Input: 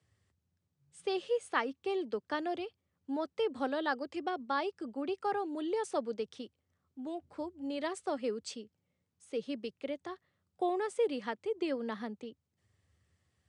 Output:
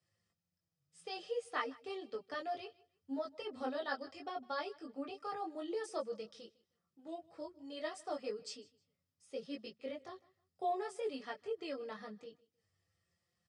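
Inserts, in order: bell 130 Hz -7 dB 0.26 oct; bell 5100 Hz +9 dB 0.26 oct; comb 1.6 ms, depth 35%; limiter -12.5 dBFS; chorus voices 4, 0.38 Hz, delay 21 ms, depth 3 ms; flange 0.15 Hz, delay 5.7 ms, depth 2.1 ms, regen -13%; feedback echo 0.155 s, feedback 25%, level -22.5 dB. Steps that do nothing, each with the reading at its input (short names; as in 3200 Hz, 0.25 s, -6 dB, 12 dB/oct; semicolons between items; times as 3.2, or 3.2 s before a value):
limiter -12.5 dBFS: input peak -17.0 dBFS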